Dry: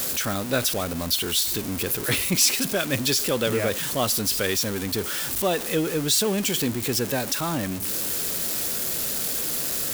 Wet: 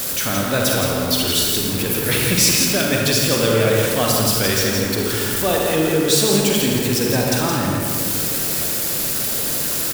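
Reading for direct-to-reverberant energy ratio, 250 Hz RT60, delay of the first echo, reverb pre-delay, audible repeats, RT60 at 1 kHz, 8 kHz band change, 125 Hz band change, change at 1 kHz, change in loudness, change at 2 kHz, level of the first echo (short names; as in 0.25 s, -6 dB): -2.5 dB, 2.6 s, 0.169 s, 38 ms, 1, 2.0 s, +5.5 dB, +9.0 dB, +7.0 dB, +6.0 dB, +6.5 dB, -5.0 dB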